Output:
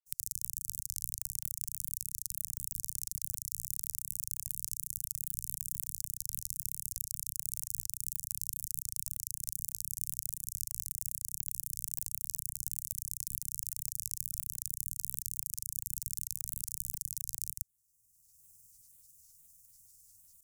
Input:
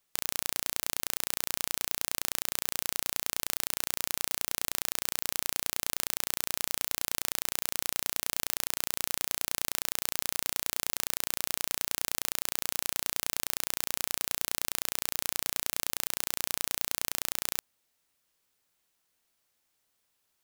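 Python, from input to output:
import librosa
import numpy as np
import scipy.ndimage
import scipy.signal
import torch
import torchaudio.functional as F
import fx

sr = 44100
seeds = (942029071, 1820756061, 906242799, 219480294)

y = scipy.signal.sosfilt(scipy.signal.cheby2(4, 40, [270.0, 3700.0], 'bandstop', fs=sr, output='sos'), x)
y = fx.granulator(y, sr, seeds[0], grain_ms=100.0, per_s=20.0, spray_ms=100.0, spread_st=3)
y = fx.band_squash(y, sr, depth_pct=70)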